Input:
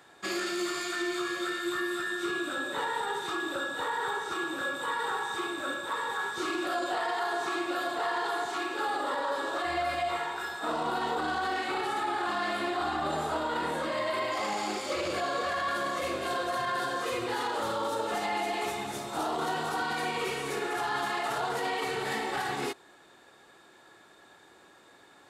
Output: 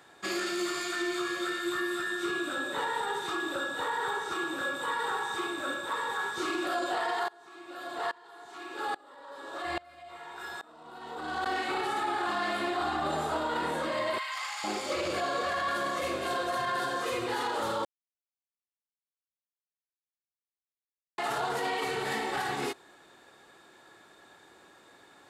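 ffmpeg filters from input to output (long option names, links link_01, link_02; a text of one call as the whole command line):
ffmpeg -i in.wav -filter_complex "[0:a]asettb=1/sr,asplit=3[link_01][link_02][link_03];[link_01]atrim=end=7.284[link_04];[link_02]atrim=start=7.28:end=11.46,asetpts=PTS-STARTPTS,afade=type=in:duration=0.004:curve=qsin,afade=type=out:start_time=4.176:duration=0.004:curve=qsin,aeval=exprs='val(0)*pow(10,-26*if(lt(mod(-1.2*n/s,1),2*abs(-1.2)/1000),1-mod(-1.2*n/s,1)/(2*abs(-1.2)/1000),(mod(-1.2*n/s,1)-2*abs(-1.2)/1000)/(1-2*abs(-1.2)/1000))/20)':channel_layout=same[link_05];[link_03]atrim=start=11.456[link_06];[link_04][link_05]acrossfade=duration=0.004:curve1=hsin:curve2=qsin[link_07];[link_07][link_06]acrossfade=duration=0.004:curve1=qsin:curve2=hsin,asettb=1/sr,asplit=3[link_08][link_09][link_10];[link_08]atrim=end=14.184[link_11];[link_09]atrim=start=14.18:end=14.64,asetpts=PTS-STARTPTS,afade=type=in:duration=0.004:curve=qsin,afade=type=out:start_time=0.456:duration=0.004:curve=qsin,highpass=frequency=1100:width=0.5412,highpass=frequency=1100:width=1.3066[link_12];[link_10]atrim=start=14.636[link_13];[link_11][link_12]acrossfade=duration=0.004:curve1=hsin:curve2=qsin[link_14];[link_14][link_13]acrossfade=duration=0.004:curve1=qsin:curve2=hsin,asplit=3[link_15][link_16][link_17];[link_15]atrim=end=17.85,asetpts=PTS-STARTPTS,afade=type=out:start_time=17.846:duration=0.004:curve=hsin[link_18];[link_16]atrim=start=17.85:end=21.18,asetpts=PTS-STARTPTS,volume=0[link_19];[link_17]atrim=start=21.18,asetpts=PTS-STARTPTS,afade=type=in:duration=0.004:curve=hsin[link_20];[link_18][link_19][link_20]concat=n=3:v=0:a=1" out.wav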